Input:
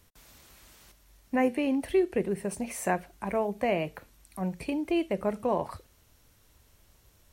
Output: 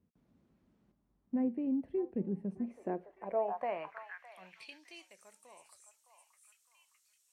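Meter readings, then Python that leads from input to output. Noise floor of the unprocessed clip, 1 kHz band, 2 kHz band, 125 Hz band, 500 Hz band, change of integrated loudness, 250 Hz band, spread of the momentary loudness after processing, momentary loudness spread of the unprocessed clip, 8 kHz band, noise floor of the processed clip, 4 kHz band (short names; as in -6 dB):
-63 dBFS, -8.5 dB, -13.5 dB, -9.5 dB, -10.0 dB, -7.0 dB, -7.0 dB, 18 LU, 9 LU, under -15 dB, -76 dBFS, -12.5 dB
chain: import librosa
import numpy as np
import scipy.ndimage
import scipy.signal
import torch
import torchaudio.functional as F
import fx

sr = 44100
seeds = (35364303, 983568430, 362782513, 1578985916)

y = fx.echo_stepped(x, sr, ms=611, hz=950.0, octaves=0.7, feedback_pct=70, wet_db=-6.0)
y = fx.filter_sweep_bandpass(y, sr, from_hz=210.0, to_hz=7900.0, start_s=2.59, end_s=5.18, q=2.1)
y = y * 10.0 ** (-1.5 / 20.0)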